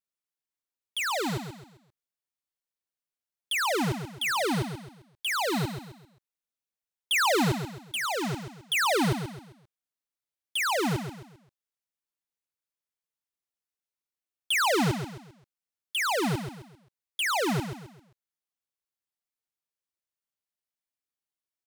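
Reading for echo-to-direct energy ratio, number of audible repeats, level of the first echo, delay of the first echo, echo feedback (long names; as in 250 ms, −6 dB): −8.0 dB, 4, −8.5 dB, 132 ms, 37%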